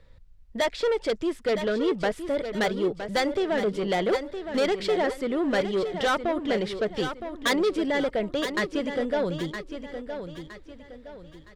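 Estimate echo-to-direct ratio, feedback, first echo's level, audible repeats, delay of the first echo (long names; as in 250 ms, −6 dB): −8.5 dB, 36%, −9.0 dB, 3, 965 ms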